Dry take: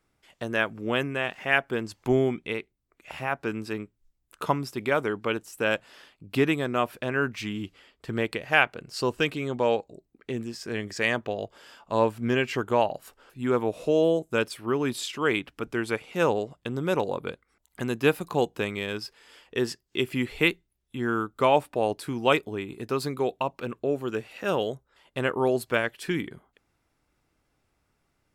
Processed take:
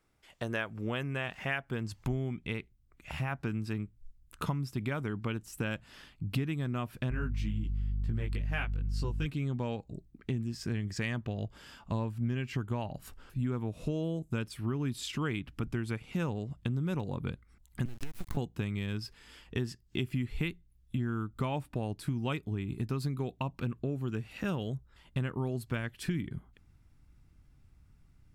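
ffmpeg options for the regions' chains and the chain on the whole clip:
ffmpeg -i in.wav -filter_complex "[0:a]asettb=1/sr,asplit=3[link_01][link_02][link_03];[link_01]atrim=end=7.104[link_04];[link_02]atrim=start=7.1:end=9.26,asetpts=PTS-STARTPTS,afade=type=in:duration=0.004:curve=qsin,afade=type=out:start_time=2.156:duration=0.004:curve=qsin,flanger=delay=17.5:depth=2.5:speed=2.1,aeval=exprs='val(0)+0.0112*(sin(2*PI*50*n/s)+sin(2*PI*2*50*n/s)/2+sin(2*PI*3*50*n/s)/3+sin(2*PI*4*50*n/s)/4+sin(2*PI*5*50*n/s)/5)':channel_layout=same[link_05];[link_03]atrim=start=9.256[link_06];[link_04][link_05]acrossfade=duration=0.004:curve1=hsin:curve2=qsin[link_07];[link_07][link_06]acrossfade=duration=0.004:curve1=qsin:curve2=hsin,asettb=1/sr,asplit=3[link_08][link_09][link_10];[link_08]atrim=end=17.854[link_11];[link_09]atrim=start=17.85:end=18.37,asetpts=PTS-STARTPTS,afade=type=in:duration=0.004:curve=qsin,afade=type=out:start_time=0.516:duration=0.004:curve=qsin,highpass=frequency=270:width=0.5412,highpass=frequency=270:width=1.3066,acompressor=threshold=-33dB:ratio=20:attack=3.2:release=140:knee=1:detection=peak,acrusher=bits=5:dc=4:mix=0:aa=0.000001[link_12];[link_10]atrim=start=18.366[link_13];[link_11][link_12]acrossfade=duration=0.004:curve1=hsin:curve2=qsin[link_14];[link_14][link_13]acrossfade=duration=0.004:curve1=qsin:curve2=hsin,asubboost=boost=9.5:cutoff=160,acompressor=threshold=-29dB:ratio=5,volume=-1.5dB" out.wav

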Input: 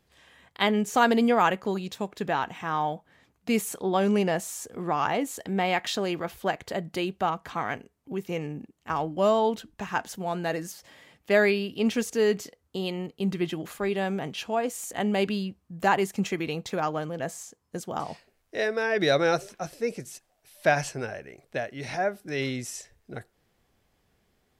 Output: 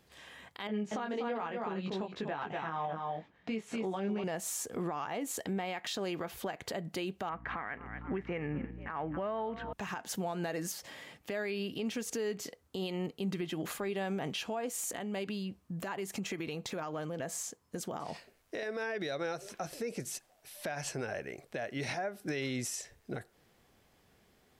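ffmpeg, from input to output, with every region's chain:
ffmpeg -i in.wav -filter_complex "[0:a]asettb=1/sr,asplit=3[link_01][link_02][link_03];[link_01]atrim=end=0.674[link_04];[link_02]atrim=start=0.67:end=4.24,asetpts=PTS-STARTPTS,afade=type=in:duration=0.004:curve=qsin,afade=type=out:start_time=3.566:duration=0.004:curve=qsin,flanger=delay=18:depth=3.1:speed=1.4,lowpass=3500,aecho=1:1:242:0.376,atrim=end_sample=157437[link_05];[link_03]atrim=start=4.236[link_06];[link_04][link_05]acrossfade=duration=0.004:curve1=hsin:curve2=qsin[link_07];[link_07][link_06]acrossfade=duration=0.004:curve1=qsin:curve2=hsin,asettb=1/sr,asplit=3[link_08][link_09][link_10];[link_08]atrim=end=7.294[link_11];[link_09]atrim=start=7.29:end=9.73,asetpts=PTS-STARTPTS,afade=type=in:duration=0.004:curve=qsin,afade=type=out:start_time=2.436:duration=0.004:curve=qsin,asplit=5[link_12][link_13][link_14][link_15][link_16];[link_13]adelay=240,afreqshift=32,volume=-23dB[link_17];[link_14]adelay=480,afreqshift=64,volume=-28.2dB[link_18];[link_15]adelay=720,afreqshift=96,volume=-33.4dB[link_19];[link_16]adelay=960,afreqshift=128,volume=-38.6dB[link_20];[link_12][link_17][link_18][link_19][link_20]amix=inputs=5:normalize=0,atrim=end_sample=107604,aeval=exprs='val(0)+0.00562*(sin(2*PI*60*n/s)+sin(2*PI*2*60*n/s)/2+sin(2*PI*3*60*n/s)/3+sin(2*PI*4*60*n/s)/4+sin(2*PI*5*60*n/s)/5)':channel_layout=same,lowpass=frequency=1900:width_type=q:width=2.9[link_21];[link_10]atrim=start=9.726[link_22];[link_11][link_21]acrossfade=duration=0.004:curve1=hsin:curve2=qsin[link_23];[link_23][link_22]acrossfade=duration=0.004:curve1=qsin:curve2=hsin,asettb=1/sr,asplit=3[link_24][link_25][link_26];[link_24]atrim=end=14.914[link_27];[link_25]atrim=start=14.91:end=18.63,asetpts=PTS-STARTPTS,afade=type=in:duration=0.004:curve=qsin,afade=type=out:start_time=3.716:duration=0.004:curve=qsin,bandreject=frequency=790:width=23,acompressor=threshold=-38dB:ratio=6:attack=3.2:release=140:knee=1:detection=peak[link_28];[link_26]atrim=start=18.626[link_29];[link_27][link_28]acrossfade=duration=0.004:curve1=hsin:curve2=qsin[link_30];[link_30][link_29]acrossfade=duration=0.004:curve1=qsin:curve2=hsin,lowshelf=frequency=71:gain=-8.5,acompressor=threshold=-31dB:ratio=6,alimiter=level_in=7.5dB:limit=-24dB:level=0:latency=1:release=159,volume=-7.5dB,volume=4dB" out.wav

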